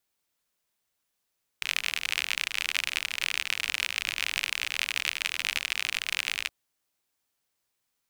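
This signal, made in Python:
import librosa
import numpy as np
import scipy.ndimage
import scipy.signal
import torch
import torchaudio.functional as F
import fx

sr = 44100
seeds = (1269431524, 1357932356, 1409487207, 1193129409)

y = fx.rain(sr, seeds[0], length_s=4.87, drops_per_s=55.0, hz=2500.0, bed_db=-25.0)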